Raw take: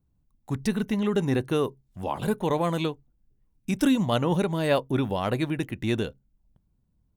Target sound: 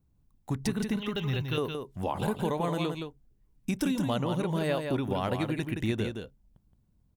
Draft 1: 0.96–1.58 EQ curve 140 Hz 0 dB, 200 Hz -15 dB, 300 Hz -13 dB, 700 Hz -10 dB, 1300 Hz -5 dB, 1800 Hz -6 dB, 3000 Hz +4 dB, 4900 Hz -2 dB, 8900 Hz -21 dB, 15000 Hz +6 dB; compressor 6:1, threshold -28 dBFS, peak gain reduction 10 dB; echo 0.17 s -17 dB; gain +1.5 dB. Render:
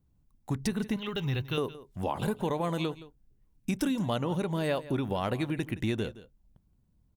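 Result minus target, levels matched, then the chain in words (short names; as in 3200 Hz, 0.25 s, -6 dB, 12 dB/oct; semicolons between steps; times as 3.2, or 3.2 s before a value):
echo-to-direct -11 dB
0.96–1.58 EQ curve 140 Hz 0 dB, 200 Hz -15 dB, 300 Hz -13 dB, 700 Hz -10 dB, 1300 Hz -5 dB, 1800 Hz -6 dB, 3000 Hz +4 dB, 4900 Hz -2 dB, 8900 Hz -21 dB, 15000 Hz +6 dB; compressor 6:1, threshold -28 dBFS, peak gain reduction 10 dB; echo 0.17 s -6 dB; gain +1.5 dB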